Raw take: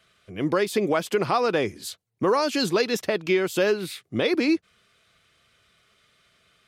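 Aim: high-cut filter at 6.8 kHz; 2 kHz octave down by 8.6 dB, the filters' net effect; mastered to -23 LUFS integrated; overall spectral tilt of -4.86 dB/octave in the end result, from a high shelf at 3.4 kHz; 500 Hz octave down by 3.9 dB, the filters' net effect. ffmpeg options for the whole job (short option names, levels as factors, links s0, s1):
-af "lowpass=6800,equalizer=f=500:t=o:g=-4.5,equalizer=f=2000:t=o:g=-9,highshelf=f=3400:g=-6.5,volume=1.78"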